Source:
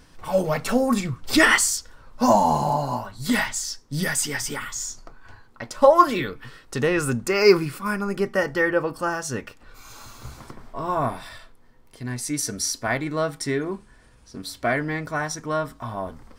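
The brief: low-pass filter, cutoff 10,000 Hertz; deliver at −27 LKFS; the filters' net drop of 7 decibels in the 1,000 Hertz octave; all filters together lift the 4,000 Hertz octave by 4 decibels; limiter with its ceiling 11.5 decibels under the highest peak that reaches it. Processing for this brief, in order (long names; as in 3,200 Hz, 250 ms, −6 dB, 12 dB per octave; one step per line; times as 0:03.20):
low-pass filter 10,000 Hz
parametric band 1,000 Hz −9 dB
parametric band 4,000 Hz +6 dB
level −0.5 dB
brickwall limiter −14.5 dBFS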